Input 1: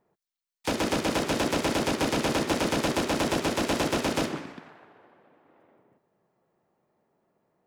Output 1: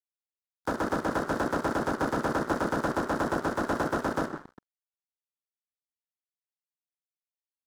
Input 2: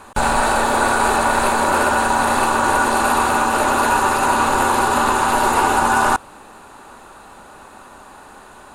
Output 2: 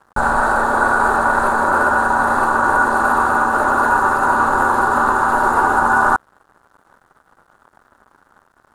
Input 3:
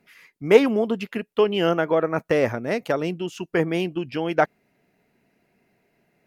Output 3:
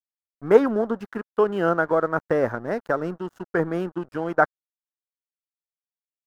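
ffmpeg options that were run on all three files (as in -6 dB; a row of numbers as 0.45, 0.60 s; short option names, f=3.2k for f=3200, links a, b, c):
-af "aeval=exprs='sgn(val(0))*max(abs(val(0))-0.0126,0)':c=same,highshelf=f=1.9k:t=q:w=3:g=-8.5,volume=-1dB"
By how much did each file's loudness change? -2.5, +1.5, -1.0 LU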